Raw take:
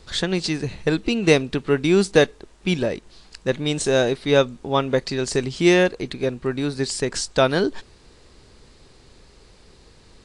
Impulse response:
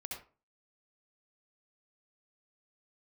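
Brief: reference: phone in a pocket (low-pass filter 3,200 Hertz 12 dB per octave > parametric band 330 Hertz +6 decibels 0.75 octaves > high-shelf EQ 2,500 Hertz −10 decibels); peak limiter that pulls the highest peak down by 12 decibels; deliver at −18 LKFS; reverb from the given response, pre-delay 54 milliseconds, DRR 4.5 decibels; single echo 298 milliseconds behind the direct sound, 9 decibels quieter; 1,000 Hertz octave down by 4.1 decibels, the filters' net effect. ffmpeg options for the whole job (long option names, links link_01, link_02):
-filter_complex "[0:a]equalizer=frequency=1000:width_type=o:gain=-4.5,alimiter=limit=-14dB:level=0:latency=1,aecho=1:1:298:0.355,asplit=2[link_01][link_02];[1:a]atrim=start_sample=2205,adelay=54[link_03];[link_02][link_03]afir=irnorm=-1:irlink=0,volume=-3dB[link_04];[link_01][link_04]amix=inputs=2:normalize=0,lowpass=3200,equalizer=frequency=330:width_type=o:width=0.75:gain=6,highshelf=frequency=2500:gain=-10,volume=4.5dB"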